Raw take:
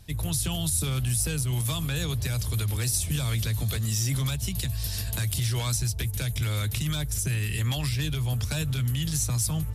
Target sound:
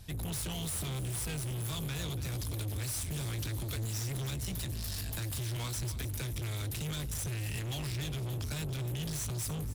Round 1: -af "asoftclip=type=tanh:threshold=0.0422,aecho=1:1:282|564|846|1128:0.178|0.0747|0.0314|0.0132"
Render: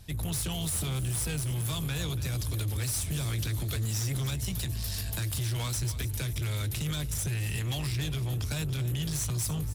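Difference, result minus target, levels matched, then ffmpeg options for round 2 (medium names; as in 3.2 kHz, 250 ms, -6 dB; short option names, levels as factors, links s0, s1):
saturation: distortion -5 dB
-af "asoftclip=type=tanh:threshold=0.0188,aecho=1:1:282|564|846|1128:0.178|0.0747|0.0314|0.0132"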